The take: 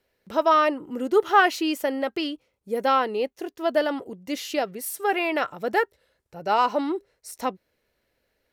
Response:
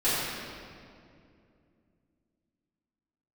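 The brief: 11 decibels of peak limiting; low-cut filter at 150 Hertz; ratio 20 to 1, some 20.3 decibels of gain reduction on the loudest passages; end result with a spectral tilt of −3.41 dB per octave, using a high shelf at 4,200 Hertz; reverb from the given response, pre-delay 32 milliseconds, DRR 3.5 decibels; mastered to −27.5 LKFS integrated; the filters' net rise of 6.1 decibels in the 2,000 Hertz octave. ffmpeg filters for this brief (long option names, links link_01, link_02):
-filter_complex "[0:a]highpass=150,equalizer=frequency=2000:width_type=o:gain=7,highshelf=frequency=4200:gain=5.5,acompressor=threshold=-29dB:ratio=20,alimiter=level_in=5dB:limit=-24dB:level=0:latency=1,volume=-5dB,asplit=2[link_01][link_02];[1:a]atrim=start_sample=2205,adelay=32[link_03];[link_02][link_03]afir=irnorm=-1:irlink=0,volume=-17.5dB[link_04];[link_01][link_04]amix=inputs=2:normalize=0,volume=10dB"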